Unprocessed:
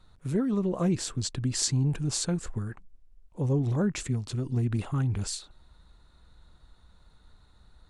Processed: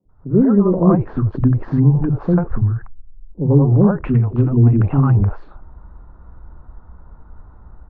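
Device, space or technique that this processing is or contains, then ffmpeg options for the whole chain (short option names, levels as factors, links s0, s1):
action camera in a waterproof case: -filter_complex "[0:a]asplit=3[s0][s1][s2];[s0]afade=t=out:st=2.51:d=0.02[s3];[s1]equalizer=f=125:t=o:w=1:g=3,equalizer=f=250:t=o:w=1:g=-5,equalizer=f=500:t=o:w=1:g=-11,equalizer=f=1000:t=o:w=1:g=-7,afade=t=in:st=2.51:d=0.02,afade=t=out:st=3.41:d=0.02[s4];[s2]afade=t=in:st=3.41:d=0.02[s5];[s3][s4][s5]amix=inputs=3:normalize=0,acrossover=split=160|530[s6][s7][s8];[s6]adelay=50[s9];[s8]adelay=90[s10];[s9][s7][s10]amix=inputs=3:normalize=0,asettb=1/sr,asplit=3[s11][s12][s13];[s11]atrim=end=4.034[s14];[s12]atrim=start=4.03:end=5.19,asetpts=PTS-STARTPTS,afade=t=in:d=0.004:c=qsin,afade=t=out:st=1.156:d=0.004:c=qsin,equalizer=f=2700:w=2.5:g=12.5[s15];[s13]atrim=start=5.186[s16];[s14][s15]acrossfade=d=0.004:c1=hsin:c2=qsin[s17];[s17][s16]acrossfade=d=0.004:c1=qsin:c2=hsin,lowpass=f=1200:w=0.5412,lowpass=f=1200:w=1.3066,dynaudnorm=f=170:g=3:m=6.31,volume=1.19" -ar 16000 -c:a aac -b:a 64k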